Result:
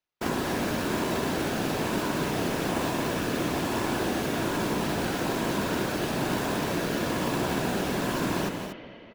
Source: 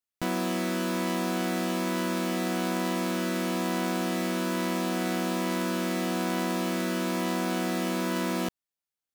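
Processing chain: sample-rate reducer 8.5 kHz, jitter 0%; spring tank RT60 2.8 s, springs 45 ms, chirp 35 ms, DRR 6 dB; whisper effect; on a send: loudspeakers at several distances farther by 60 m -10 dB, 81 m -9 dB

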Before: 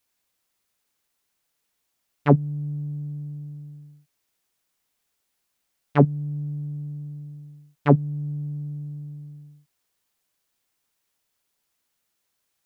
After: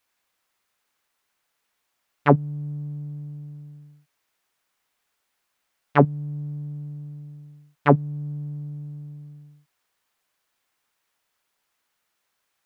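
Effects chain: peaking EQ 1.3 kHz +9 dB 2.9 oct; trim -2.5 dB

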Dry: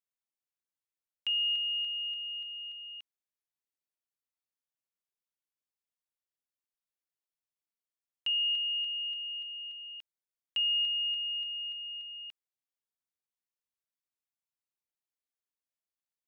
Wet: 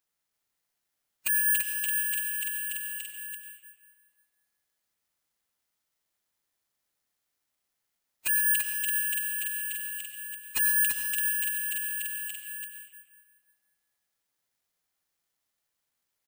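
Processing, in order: Bessel high-pass 2.8 kHz, order 2; in parallel at +2 dB: compression 16:1, threshold -41 dBFS, peak gain reduction 11 dB; on the sum: integer overflow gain 25.5 dB; formant-preserving pitch shift -9 st; saturation -23.5 dBFS, distortion -24 dB; delay 336 ms -4.5 dB; on a send at -2.5 dB: reverberation RT60 2.3 s, pre-delay 55 ms; on the sum: careless resampling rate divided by 4×, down none, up zero stuff

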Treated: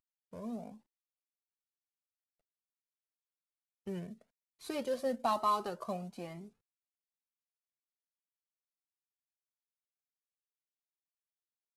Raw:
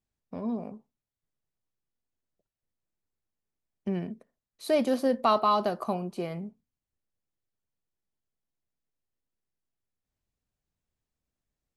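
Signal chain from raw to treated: CVSD coder 64 kbps; Shepard-style flanger rising 1.1 Hz; trim -3.5 dB

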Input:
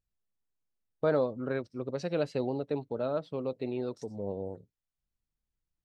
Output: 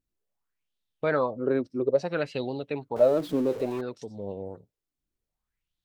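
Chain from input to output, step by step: 2.96–3.81 s: jump at every zero crossing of -39.5 dBFS; sweeping bell 0.6 Hz 280–3700 Hz +15 dB

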